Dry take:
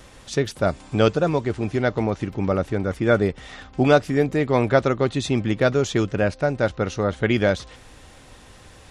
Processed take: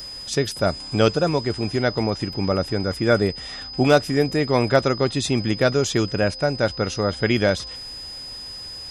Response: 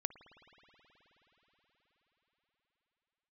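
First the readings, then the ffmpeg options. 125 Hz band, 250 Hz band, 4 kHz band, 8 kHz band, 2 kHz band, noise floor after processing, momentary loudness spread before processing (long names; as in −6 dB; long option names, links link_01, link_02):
0.0 dB, 0.0 dB, +7.5 dB, +5.5 dB, +0.5 dB, −36 dBFS, 7 LU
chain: -af "asoftclip=type=hard:threshold=-6dB,aeval=exprs='val(0)+0.0141*sin(2*PI*5000*n/s)':channel_layout=same,highshelf=frequency=6600:gain=11"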